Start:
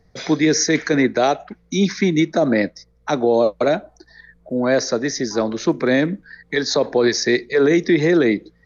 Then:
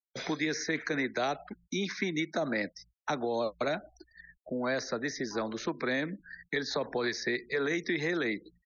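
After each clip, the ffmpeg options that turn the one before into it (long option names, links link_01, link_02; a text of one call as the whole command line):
ffmpeg -i in.wav -filter_complex "[0:a]agate=range=-33dB:threshold=-42dB:ratio=3:detection=peak,acrossover=split=250|900|3600[link_01][link_02][link_03][link_04];[link_01]acompressor=threshold=-35dB:ratio=4[link_05];[link_02]acompressor=threshold=-29dB:ratio=4[link_06];[link_03]acompressor=threshold=-25dB:ratio=4[link_07];[link_04]acompressor=threshold=-40dB:ratio=4[link_08];[link_05][link_06][link_07][link_08]amix=inputs=4:normalize=0,afftfilt=real='re*gte(hypot(re,im),0.00562)':imag='im*gte(hypot(re,im),0.00562)':win_size=1024:overlap=0.75,volume=-6.5dB" out.wav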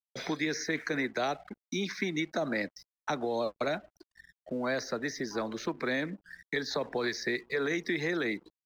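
ffmpeg -i in.wav -af "aeval=exprs='sgn(val(0))*max(abs(val(0))-0.00119,0)':channel_layout=same" out.wav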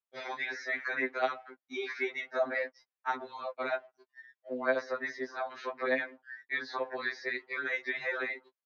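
ffmpeg -i in.wav -af "highpass=550,lowpass=2200,afftfilt=real='re*2.45*eq(mod(b,6),0)':imag='im*2.45*eq(mod(b,6),0)':win_size=2048:overlap=0.75,volume=5.5dB" out.wav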